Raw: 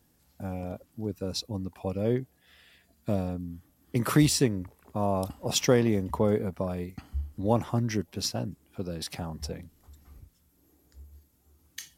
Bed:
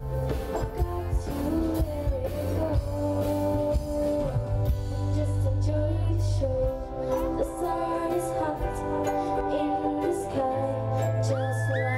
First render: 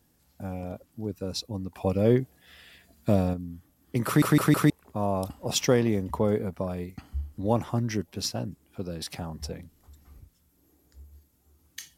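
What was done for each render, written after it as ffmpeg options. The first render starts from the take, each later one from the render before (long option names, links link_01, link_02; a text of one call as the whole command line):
ffmpeg -i in.wav -filter_complex "[0:a]asettb=1/sr,asplit=3[link_01][link_02][link_03];[link_01]atrim=end=1.744[link_04];[link_02]atrim=start=1.74:end=3.34,asetpts=PTS-STARTPTS,afade=type=in:duration=0.004:curve=qsin,afade=type=out:start_time=1.596:duration=0.004:curve=qsin,acontrast=46[link_05];[link_03]atrim=start=3.336[link_06];[link_04][link_05]acrossfade=duration=0.004:curve1=hsin:curve2=qsin[link_07];[link_07][link_06]acrossfade=duration=0.004:curve1=qsin:curve2=hsin,asplit=5[link_08][link_09][link_10][link_11][link_12];[link_08]atrim=end=4.222[link_13];[link_09]atrim=start=4.058:end=4.222[link_14];[link_10]atrim=start=4.058:end=4.222[link_15];[link_11]atrim=start=4.058:end=4.222[link_16];[link_12]atrim=start=4.698[link_17];[link_13][link_14]acrossfade=duration=0.004:curve1=hsin:curve2=hsin[link_18];[link_18][link_15]acrossfade=duration=0.004:curve1=hsin:curve2=hsin[link_19];[link_19][link_16]acrossfade=duration=0.004:curve1=hsin:curve2=hsin[link_20];[link_20][link_17]acrossfade=duration=0.004:curve1=hsin:curve2=hsin" out.wav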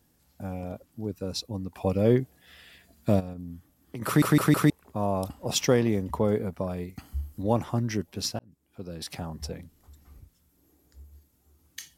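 ffmpeg -i in.wav -filter_complex "[0:a]asplit=3[link_01][link_02][link_03];[link_01]afade=type=out:start_time=3.19:duration=0.02[link_04];[link_02]acompressor=threshold=-33dB:ratio=6:attack=3.2:release=140:knee=1:detection=peak,afade=type=in:start_time=3.19:duration=0.02,afade=type=out:start_time=4.01:duration=0.02[link_05];[link_03]afade=type=in:start_time=4.01:duration=0.02[link_06];[link_04][link_05][link_06]amix=inputs=3:normalize=0,asettb=1/sr,asplit=3[link_07][link_08][link_09];[link_07]atrim=end=6.964[link_10];[link_08]atrim=start=6.96:end=7.43,asetpts=PTS-STARTPTS,afade=type=in:duration=0.004:curve=qsin,afade=type=out:start_time=0.466:duration=0.004:curve=qsin,highshelf=frequency=6900:gain=11.5[link_11];[link_09]atrim=start=7.426[link_12];[link_10][link_11]acrossfade=duration=0.004:curve1=hsin:curve2=qsin[link_13];[link_13][link_12]acrossfade=duration=0.004:curve1=qsin:curve2=hsin,asplit=2[link_14][link_15];[link_14]atrim=end=8.39,asetpts=PTS-STARTPTS,afade=type=out:start_time=8.386:duration=0.004:curve=hsin[link_16];[link_15]atrim=start=8.39,asetpts=PTS-STARTPTS,afade=type=in:duration=0.77[link_17];[link_16][link_17]concat=n=2:v=0:a=1" out.wav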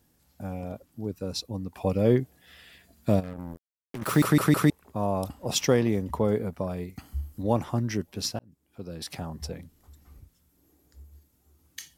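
ffmpeg -i in.wav -filter_complex "[0:a]asettb=1/sr,asplit=3[link_01][link_02][link_03];[link_01]atrim=end=3.234[link_04];[link_02]atrim=start=3.23:end=4.24,asetpts=PTS-STARTPTS,afade=type=in:duration=0.004:curve=qsin,afade=type=out:start_time=1.006:duration=0.004:curve=qsin,acrusher=bits=5:mix=0:aa=0.5[link_05];[link_03]atrim=start=4.236[link_06];[link_04][link_05]acrossfade=duration=0.004:curve1=hsin:curve2=qsin[link_07];[link_07][link_06]acrossfade=duration=0.004:curve1=qsin:curve2=hsin" out.wav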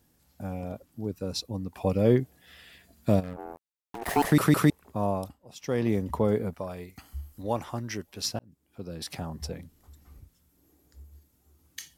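ffmpeg -i in.wav -filter_complex "[0:a]asettb=1/sr,asplit=3[link_01][link_02][link_03];[link_01]atrim=end=3.364[link_04];[link_02]atrim=start=3.36:end=4.32,asetpts=PTS-STARTPTS,afade=type=in:duration=0.004:curve=qsin,afade=type=out:start_time=0.956:duration=0.004:curve=qsin,aeval=exprs='val(0)*sin(2*PI*580*n/s)':channel_layout=same[link_05];[link_03]atrim=start=4.316[link_06];[link_04][link_05]acrossfade=duration=0.004:curve1=hsin:curve2=qsin[link_07];[link_07][link_06]acrossfade=duration=0.004:curve1=qsin:curve2=hsin,asettb=1/sr,asplit=3[link_08][link_09][link_10];[link_08]atrim=end=6.544[link_11];[link_09]atrim=start=6.54:end=8.27,asetpts=PTS-STARTPTS,afade=type=in:duration=0.004:curve=qsin,afade=type=out:start_time=1.726:duration=0.004:curve=qsin,equalizer=frequency=160:width=0.39:gain=-8.5[link_12];[link_10]atrim=start=8.266[link_13];[link_11][link_12]acrossfade=duration=0.004:curve1=hsin:curve2=qsin[link_14];[link_14][link_13]acrossfade=duration=0.004:curve1=qsin:curve2=hsin,asplit=3[link_15][link_16][link_17];[link_15]atrim=end=5.39,asetpts=PTS-STARTPTS,afade=type=out:start_time=5.09:duration=0.3:silence=0.1[link_18];[link_16]atrim=start=5.39:end=5.61,asetpts=PTS-STARTPTS,volume=-20dB[link_19];[link_17]atrim=start=5.61,asetpts=PTS-STARTPTS,afade=type=in:duration=0.3:silence=0.1[link_20];[link_18][link_19][link_20]concat=n=3:v=0:a=1" out.wav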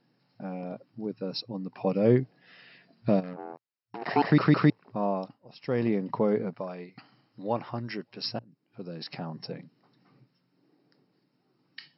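ffmpeg -i in.wav -af "bandreject=frequency=3400:width=5.9,afftfilt=real='re*between(b*sr/4096,110,5500)':imag='im*between(b*sr/4096,110,5500)':win_size=4096:overlap=0.75" out.wav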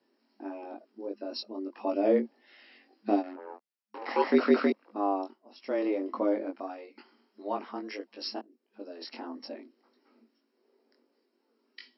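ffmpeg -i in.wav -af "flanger=delay=19.5:depth=2.3:speed=1.6,afreqshift=98" out.wav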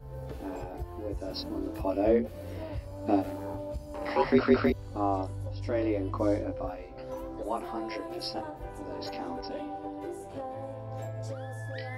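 ffmpeg -i in.wav -i bed.wav -filter_complex "[1:a]volume=-11.5dB[link_01];[0:a][link_01]amix=inputs=2:normalize=0" out.wav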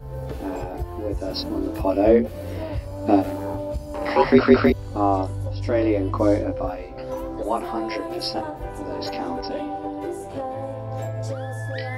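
ffmpeg -i in.wav -af "volume=8.5dB" out.wav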